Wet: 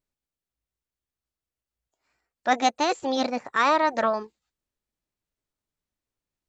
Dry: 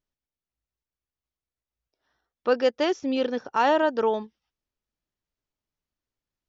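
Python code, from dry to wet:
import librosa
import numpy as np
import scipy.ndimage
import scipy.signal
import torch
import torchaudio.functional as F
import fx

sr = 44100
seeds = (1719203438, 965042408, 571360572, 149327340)

y = fx.formant_shift(x, sr, semitones=5)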